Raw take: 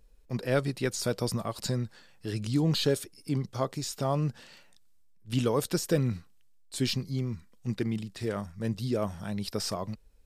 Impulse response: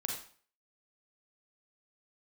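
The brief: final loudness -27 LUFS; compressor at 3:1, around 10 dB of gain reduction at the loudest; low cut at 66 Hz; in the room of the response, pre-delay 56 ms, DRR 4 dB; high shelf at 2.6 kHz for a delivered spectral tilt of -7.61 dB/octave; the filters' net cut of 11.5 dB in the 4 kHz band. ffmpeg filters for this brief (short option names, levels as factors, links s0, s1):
-filter_complex "[0:a]highpass=66,highshelf=f=2600:g=-8,equalizer=f=4000:t=o:g=-7.5,acompressor=threshold=0.0178:ratio=3,asplit=2[s0][s1];[1:a]atrim=start_sample=2205,adelay=56[s2];[s1][s2]afir=irnorm=-1:irlink=0,volume=0.501[s3];[s0][s3]amix=inputs=2:normalize=0,volume=3.55"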